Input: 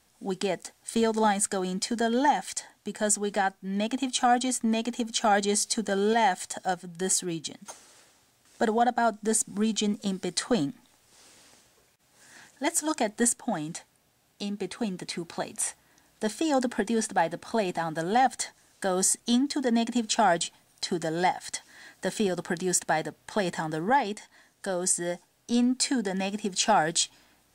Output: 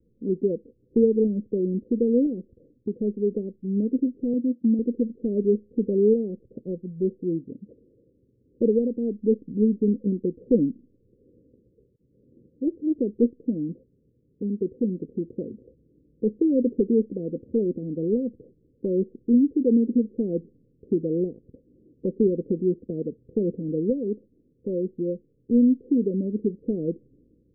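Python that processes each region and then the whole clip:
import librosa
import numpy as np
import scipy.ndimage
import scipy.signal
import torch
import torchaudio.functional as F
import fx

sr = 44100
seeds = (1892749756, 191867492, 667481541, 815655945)

y = fx.chain(x, sr, fx.highpass(hz=100.0, slope=12),
    fx.fixed_phaser(hz=410.0, stages=6), at=(4.33, 4.79))
y = scipy.signal.sosfilt(scipy.signal.butter(16, 510.0, 'lowpass', fs=sr, output='sos'), y)
y = fx.dynamic_eq(y, sr, hz=120.0, q=1.3, threshold_db=-45.0, ratio=4.0, max_db=-6)
y = F.gain(torch.from_numpy(y), 7.5).numpy()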